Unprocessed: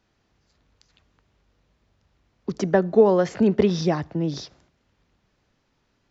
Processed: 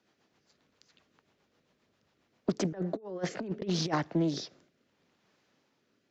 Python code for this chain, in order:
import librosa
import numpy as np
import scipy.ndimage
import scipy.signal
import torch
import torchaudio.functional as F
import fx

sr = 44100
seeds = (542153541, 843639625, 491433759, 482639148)

y = scipy.signal.sosfilt(scipy.signal.butter(2, 210.0, 'highpass', fs=sr, output='sos'), x)
y = fx.over_compress(y, sr, threshold_db=-25.0, ratio=-0.5)
y = fx.rotary_switch(y, sr, hz=7.5, then_hz=0.75, switch_at_s=2.87)
y = fx.doppler_dist(y, sr, depth_ms=0.31)
y = F.gain(torch.from_numpy(y), -4.0).numpy()